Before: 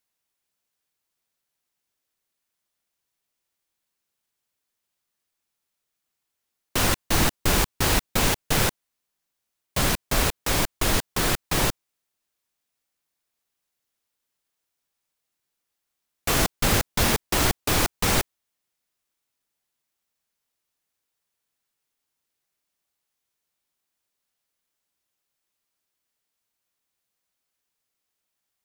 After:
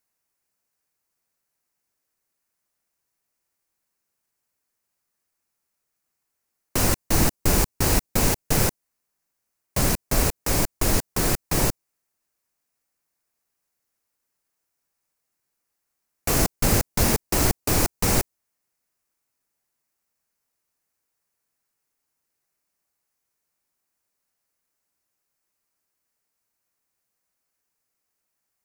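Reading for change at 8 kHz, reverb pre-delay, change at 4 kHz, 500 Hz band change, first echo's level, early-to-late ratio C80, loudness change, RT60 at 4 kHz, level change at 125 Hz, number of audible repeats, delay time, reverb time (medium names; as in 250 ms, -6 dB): +1.5 dB, no reverb, -4.0 dB, +1.0 dB, no echo, no reverb, +0.5 dB, no reverb, +2.5 dB, no echo, no echo, no reverb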